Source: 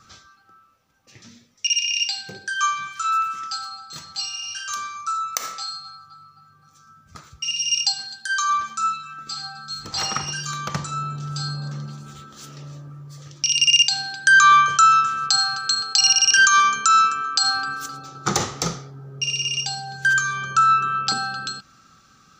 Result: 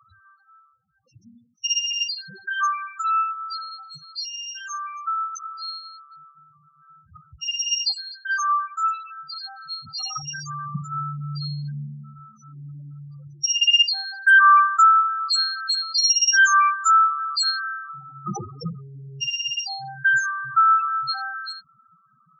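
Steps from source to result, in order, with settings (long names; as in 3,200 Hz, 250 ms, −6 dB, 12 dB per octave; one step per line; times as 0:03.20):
spectral peaks only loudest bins 4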